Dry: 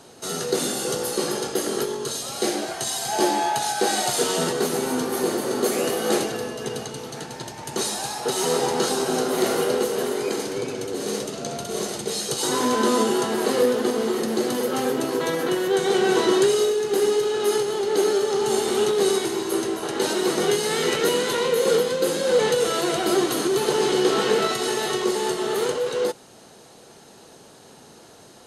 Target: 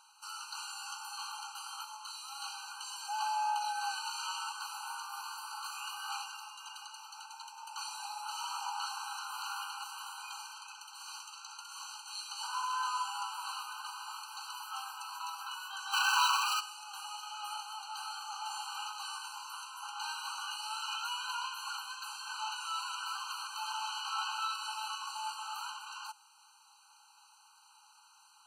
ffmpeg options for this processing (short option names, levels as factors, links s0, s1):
-filter_complex "[0:a]acrossover=split=5100[s0][s1];[s1]acompressor=threshold=0.0141:ratio=4:attack=1:release=60[s2];[s0][s2]amix=inputs=2:normalize=0,asplit=3[s3][s4][s5];[s3]afade=t=out:st=15.92:d=0.02[s6];[s4]asplit=2[s7][s8];[s8]highpass=f=720:p=1,volume=63.1,asoftclip=type=tanh:threshold=0.398[s9];[s7][s9]amix=inputs=2:normalize=0,lowpass=f=4300:p=1,volume=0.501,afade=t=in:st=15.92:d=0.02,afade=t=out:st=16.59:d=0.02[s10];[s5]afade=t=in:st=16.59:d=0.02[s11];[s6][s10][s11]amix=inputs=3:normalize=0,afftfilt=real='re*eq(mod(floor(b*sr/1024/790),2),1)':imag='im*eq(mod(floor(b*sr/1024/790),2),1)':win_size=1024:overlap=0.75,volume=0.398"